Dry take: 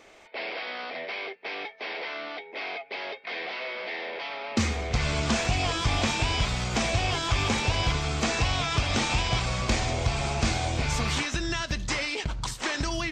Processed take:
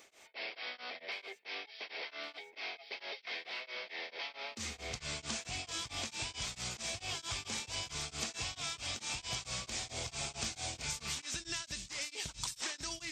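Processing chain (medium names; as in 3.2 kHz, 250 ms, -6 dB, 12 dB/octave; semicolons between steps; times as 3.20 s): high-pass 87 Hz 6 dB/octave; pre-emphasis filter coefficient 0.8; compression, threshold -40 dBFS, peak gain reduction 9 dB; on a send: feedback echo behind a high-pass 1117 ms, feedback 65%, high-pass 3.7 kHz, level -4 dB; on the sum: tremolo of two beating tones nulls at 4.5 Hz; trim +4.5 dB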